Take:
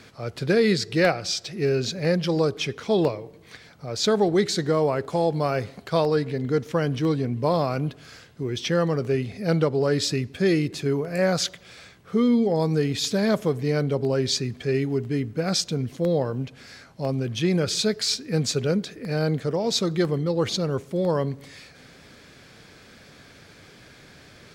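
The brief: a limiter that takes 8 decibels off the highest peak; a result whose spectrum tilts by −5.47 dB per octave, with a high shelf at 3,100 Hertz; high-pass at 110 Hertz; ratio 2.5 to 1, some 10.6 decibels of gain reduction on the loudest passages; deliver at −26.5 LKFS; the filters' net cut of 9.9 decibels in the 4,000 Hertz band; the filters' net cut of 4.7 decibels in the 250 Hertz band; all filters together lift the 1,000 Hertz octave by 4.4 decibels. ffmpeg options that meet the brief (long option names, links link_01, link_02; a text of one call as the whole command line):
ffmpeg -i in.wav -af "highpass=110,equalizer=frequency=250:width_type=o:gain=-7,equalizer=frequency=1000:width_type=o:gain=7.5,highshelf=frequency=3100:gain=-8,equalizer=frequency=4000:width_type=o:gain=-6,acompressor=threshold=-33dB:ratio=2.5,volume=9.5dB,alimiter=limit=-16.5dB:level=0:latency=1" out.wav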